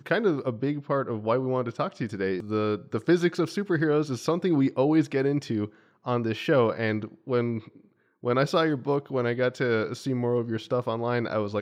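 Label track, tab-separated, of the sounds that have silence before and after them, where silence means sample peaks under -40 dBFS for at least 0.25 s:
6.060000	7.760000	sound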